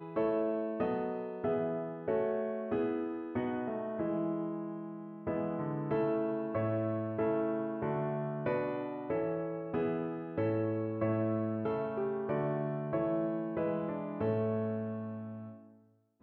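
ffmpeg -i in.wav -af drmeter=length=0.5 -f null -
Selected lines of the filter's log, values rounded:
Channel 1: DR: 8.7
Overall DR: 8.7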